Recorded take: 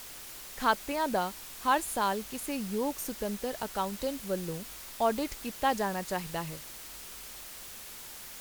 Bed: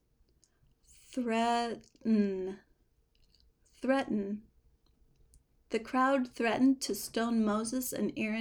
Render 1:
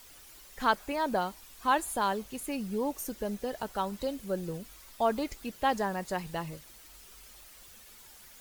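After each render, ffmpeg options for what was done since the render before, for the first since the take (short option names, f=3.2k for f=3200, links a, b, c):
-af "afftdn=nr=10:nf=-46"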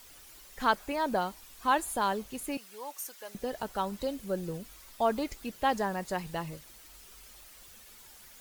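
-filter_complex "[0:a]asettb=1/sr,asplit=3[a][b][c];[a]atrim=end=2.574[d];[b]atrim=start=2.57:end=3.35,asetpts=PTS-STARTPTS,afade=t=in:d=0.004:c=qsin,afade=t=out:st=0.776:d=0.004:c=qsin,highpass=970[e];[c]atrim=start=3.346[f];[d][e]acrossfade=d=0.004:c1=hsin:c2=qsin[g];[g][f]acrossfade=d=0.004:c1=qsin:c2=hsin"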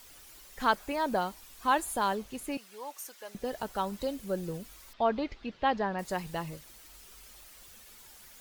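-filter_complex "[0:a]asettb=1/sr,asplit=3[a][b][c];[a]atrim=end=2.154[d];[b]atrim=start=2.15:end=3.45,asetpts=PTS-STARTPTS,afade=t=in:d=0.004:c=qsin,afade=t=out:st=1.296:d=0.004:c=qsin,highshelf=f=7.9k:g=-5.5[e];[c]atrim=start=3.446[f];[d][e]acrossfade=d=0.004:c1=hsin:c2=qsin[g];[g][f]acrossfade=d=0.004:c1=qsin:c2=hsin,asettb=1/sr,asplit=3[h][i][j];[h]atrim=end=4.934[k];[i]atrim=start=4.93:end=5.99,asetpts=PTS-STARTPTS,afade=t=in:d=0.004:c=qsin,afade=t=out:st=1.056:d=0.004:c=qsin,lowpass=f=4.2k:w=0.5412,lowpass=f=4.2k:w=1.3066[l];[j]atrim=start=5.986[m];[k][l]acrossfade=d=0.004:c1=hsin:c2=qsin[n];[n][m]acrossfade=d=0.004:c1=qsin:c2=hsin"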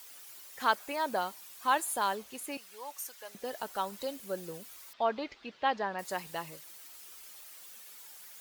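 -af "highpass=f=560:p=1,highshelf=f=10k:g=5"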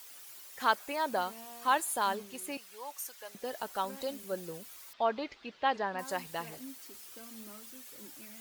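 -filter_complex "[1:a]volume=-21dB[a];[0:a][a]amix=inputs=2:normalize=0"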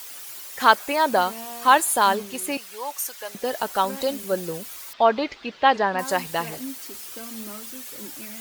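-af "volume=12dB"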